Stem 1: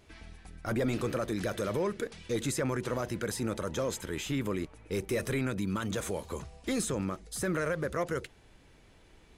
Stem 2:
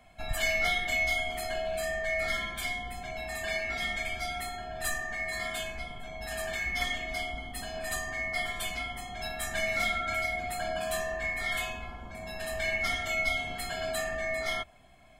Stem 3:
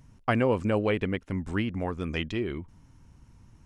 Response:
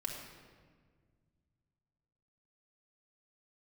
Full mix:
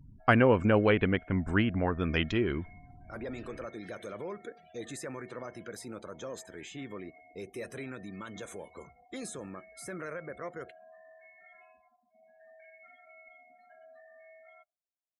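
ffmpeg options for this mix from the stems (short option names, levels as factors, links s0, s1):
-filter_complex "[0:a]highpass=f=230:p=1,adelay=2450,volume=0.422[s0];[1:a]acrossover=split=190 2100:gain=0.112 1 0.178[s1][s2][s3];[s1][s2][s3]amix=inputs=3:normalize=0,bandreject=f=398.8:t=h:w=4,bandreject=f=797.6:t=h:w=4,bandreject=f=1196.4:t=h:w=4,bandreject=f=1595.2:t=h:w=4,bandreject=f=1994:t=h:w=4,bandreject=f=2392.8:t=h:w=4,bandreject=f=2791.6:t=h:w=4,bandreject=f=3190.4:t=h:w=4,bandreject=f=3589.2:t=h:w=4,bandreject=f=3988:t=h:w=4,bandreject=f=4386.8:t=h:w=4,bandreject=f=4785.6:t=h:w=4,bandreject=f=5184.4:t=h:w=4,bandreject=f=5583.2:t=h:w=4,bandreject=f=5982:t=h:w=4,bandreject=f=6380.8:t=h:w=4,bandreject=f=6779.6:t=h:w=4,bandreject=f=7178.4:t=h:w=4,bandreject=f=7577.2:t=h:w=4,bandreject=f=7976:t=h:w=4,bandreject=f=8374.8:t=h:w=4,bandreject=f=8773.6:t=h:w=4,bandreject=f=9172.4:t=h:w=4,bandreject=f=9571.2:t=h:w=4,bandreject=f=9970:t=h:w=4,bandreject=f=10368.8:t=h:w=4,bandreject=f=10767.6:t=h:w=4,bandreject=f=11166.4:t=h:w=4,bandreject=f=11565.2:t=h:w=4,bandreject=f=11964:t=h:w=4,acompressor=threshold=0.02:ratio=5,volume=0.133[s4];[2:a]equalizer=f=1500:t=o:w=0.4:g=5.5,volume=1.19[s5];[s0][s4][s5]amix=inputs=3:normalize=0,afftdn=nr=33:nf=-53"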